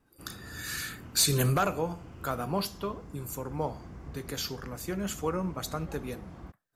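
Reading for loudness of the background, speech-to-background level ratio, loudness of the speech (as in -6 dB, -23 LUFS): -47.0 LUFS, 15.0 dB, -32.0 LUFS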